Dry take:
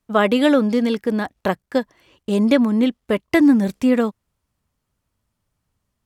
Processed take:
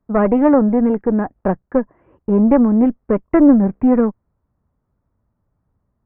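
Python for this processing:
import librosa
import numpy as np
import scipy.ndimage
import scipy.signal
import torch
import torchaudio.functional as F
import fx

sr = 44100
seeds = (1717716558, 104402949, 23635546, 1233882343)

y = fx.diode_clip(x, sr, knee_db=-17.0)
y = scipy.ndimage.gaussian_filter1d(y, 6.4, mode='constant')
y = y * librosa.db_to_amplitude(6.5)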